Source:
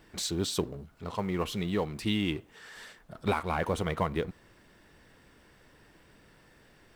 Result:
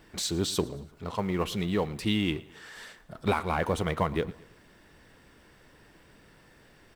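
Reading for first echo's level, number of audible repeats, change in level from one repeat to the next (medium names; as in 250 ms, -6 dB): -21.0 dB, 3, -7.0 dB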